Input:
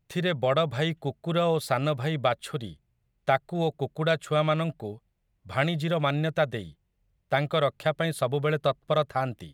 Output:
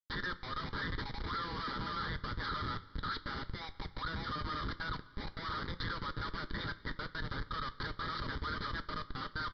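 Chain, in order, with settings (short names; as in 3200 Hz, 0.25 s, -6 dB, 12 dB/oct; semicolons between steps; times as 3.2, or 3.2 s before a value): reverse delay 0.56 s, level -3.5 dB; recorder AGC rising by 23 dB/s; HPF 650 Hz 24 dB/oct; compressor 8:1, threshold -31 dBFS, peak gain reduction 14 dB; fixed phaser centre 1100 Hz, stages 4; Schmitt trigger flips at -44 dBFS; fixed phaser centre 2600 Hz, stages 6; downsampling 11025 Hz; two-slope reverb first 0.22 s, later 2.5 s, from -18 dB, DRR 9 dB; gain +5 dB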